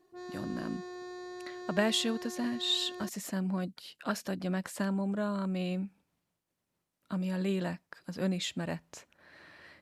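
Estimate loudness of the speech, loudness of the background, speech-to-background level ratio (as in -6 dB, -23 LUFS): -34.0 LUFS, -44.0 LUFS, 10.0 dB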